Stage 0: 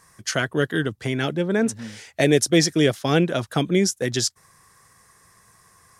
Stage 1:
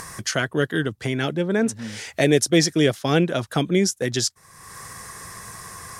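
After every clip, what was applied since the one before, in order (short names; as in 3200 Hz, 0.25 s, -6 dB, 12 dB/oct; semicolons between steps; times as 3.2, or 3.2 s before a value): upward compressor, threshold -23 dBFS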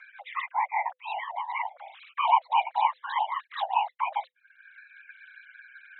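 sine-wave speech; whisperiser; frequency shift +500 Hz; gain -7.5 dB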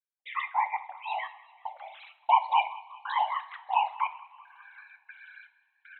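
step gate "..xxxx.xxx." 118 bpm -60 dB; frequency-shifting echo 0.192 s, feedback 58%, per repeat +38 Hz, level -21.5 dB; two-slope reverb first 0.44 s, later 2.8 s, from -22 dB, DRR 9 dB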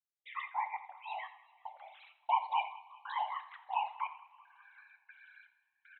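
echo 86 ms -16.5 dB; gain -8.5 dB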